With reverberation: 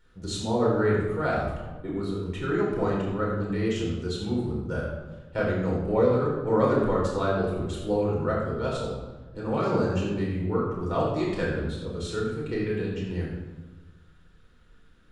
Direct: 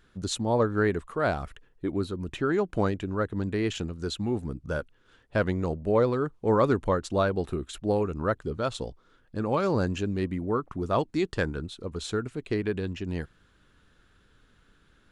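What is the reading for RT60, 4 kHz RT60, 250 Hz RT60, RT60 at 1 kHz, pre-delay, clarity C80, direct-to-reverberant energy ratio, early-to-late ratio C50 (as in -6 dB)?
1.2 s, 0.80 s, 1.5 s, 1.1 s, 6 ms, 3.5 dB, -5.0 dB, 1.5 dB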